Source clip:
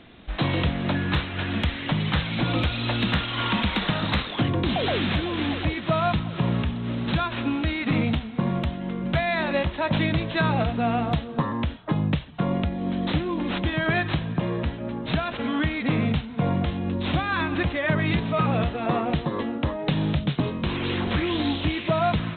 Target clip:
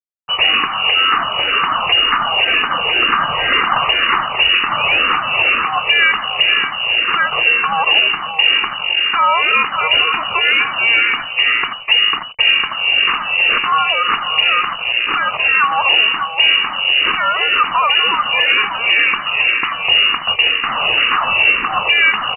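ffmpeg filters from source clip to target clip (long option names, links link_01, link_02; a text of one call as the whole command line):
ffmpeg -i in.wav -filter_complex "[0:a]equalizer=frequency=1800:width_type=o:width=0.31:gain=13.5,bandreject=frequency=60:width_type=h:width=6,bandreject=frequency=120:width_type=h:width=6,bandreject=frequency=180:width_type=h:width=6,acrossover=split=340[link_01][link_02];[link_01]crystalizer=i=7:c=0[link_03];[link_03][link_02]amix=inputs=2:normalize=0,acrusher=bits=4:mix=0:aa=0.5,asplit=2[link_04][link_05];[link_05]aecho=0:1:584:0.316[link_06];[link_04][link_06]amix=inputs=2:normalize=0,lowpass=frequency=2600:width_type=q:width=0.5098,lowpass=frequency=2600:width_type=q:width=0.6013,lowpass=frequency=2600:width_type=q:width=0.9,lowpass=frequency=2600:width_type=q:width=2.563,afreqshift=-3000,alimiter=level_in=14dB:limit=-1dB:release=50:level=0:latency=1,asplit=2[link_07][link_08];[link_08]afreqshift=-2[link_09];[link_07][link_09]amix=inputs=2:normalize=1,volume=-1dB" out.wav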